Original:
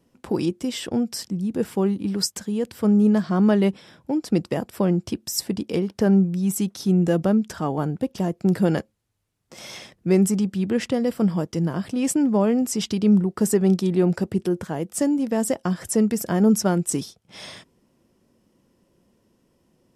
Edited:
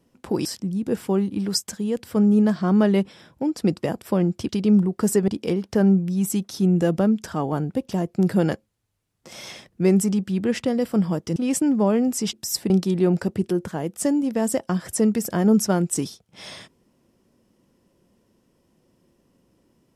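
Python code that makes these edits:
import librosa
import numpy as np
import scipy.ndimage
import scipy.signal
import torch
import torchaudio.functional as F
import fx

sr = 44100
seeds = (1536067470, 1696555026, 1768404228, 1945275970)

y = fx.edit(x, sr, fx.cut(start_s=0.45, length_s=0.68),
    fx.swap(start_s=5.17, length_s=0.37, other_s=12.87, other_length_s=0.79),
    fx.cut(start_s=11.62, length_s=0.28), tone=tone)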